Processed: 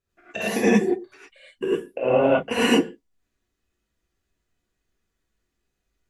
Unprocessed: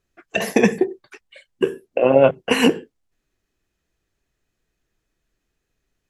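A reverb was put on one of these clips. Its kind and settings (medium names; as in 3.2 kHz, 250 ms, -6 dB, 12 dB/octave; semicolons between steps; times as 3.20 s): gated-style reverb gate 130 ms rising, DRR -8 dB; trim -11 dB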